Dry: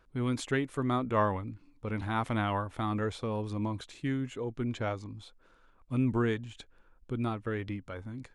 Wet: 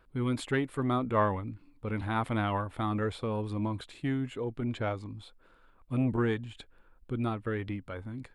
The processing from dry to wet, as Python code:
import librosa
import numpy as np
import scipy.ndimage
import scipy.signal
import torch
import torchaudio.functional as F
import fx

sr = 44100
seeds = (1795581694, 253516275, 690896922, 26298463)

y = fx.peak_eq(x, sr, hz=6100.0, db=-11.5, octaves=0.44)
y = fx.transformer_sat(y, sr, knee_hz=360.0)
y = y * librosa.db_to_amplitude(1.5)